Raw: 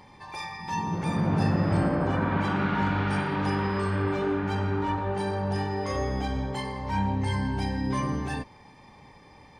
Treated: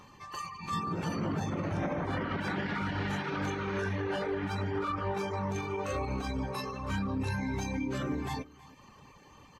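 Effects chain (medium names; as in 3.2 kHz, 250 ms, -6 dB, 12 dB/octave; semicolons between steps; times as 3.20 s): formant shift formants +4 st; peak limiter -21 dBFS, peak gain reduction 8 dB; reverb removal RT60 0.64 s; delay 320 ms -20.5 dB; trim -2 dB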